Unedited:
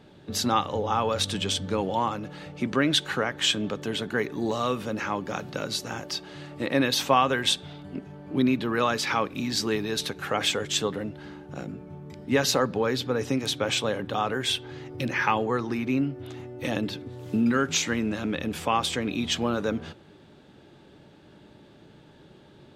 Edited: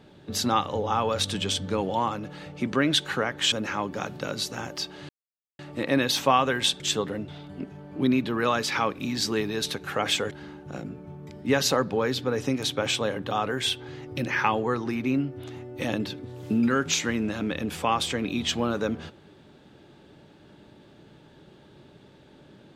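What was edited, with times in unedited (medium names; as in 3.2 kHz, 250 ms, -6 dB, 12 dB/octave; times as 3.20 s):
3.52–4.85 s: delete
6.42 s: insert silence 0.50 s
10.66–11.14 s: move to 7.63 s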